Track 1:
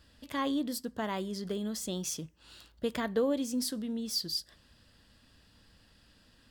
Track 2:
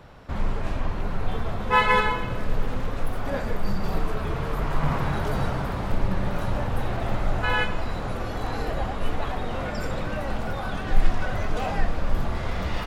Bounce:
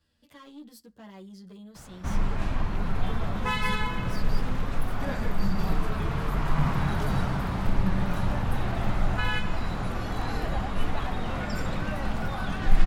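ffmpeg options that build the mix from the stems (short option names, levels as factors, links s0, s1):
-filter_complex "[0:a]asoftclip=type=tanh:threshold=0.0316,asplit=2[s0][s1];[s1]adelay=9.8,afreqshift=-0.32[s2];[s0][s2]amix=inputs=2:normalize=1,volume=0.376[s3];[1:a]equalizer=f=510:t=o:w=0.81:g=-5.5,adelay=1750,volume=0.944[s4];[s3][s4]amix=inputs=2:normalize=0,acrossover=split=260|3000[s5][s6][s7];[s6]acompressor=threshold=0.0355:ratio=6[s8];[s5][s8][s7]amix=inputs=3:normalize=0,equalizer=f=180:t=o:w=0.42:g=4"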